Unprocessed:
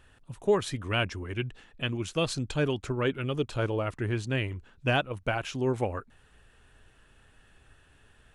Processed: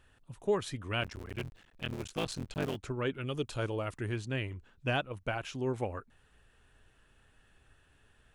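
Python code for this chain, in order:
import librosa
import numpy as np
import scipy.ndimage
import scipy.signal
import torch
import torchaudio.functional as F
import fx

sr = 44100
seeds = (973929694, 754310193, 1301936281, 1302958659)

y = fx.cycle_switch(x, sr, every=3, mode='muted', at=(1.01, 2.75), fade=0.02)
y = fx.high_shelf(y, sr, hz=4800.0, db=9.0, at=(3.27, 4.16))
y = y * librosa.db_to_amplitude(-5.5)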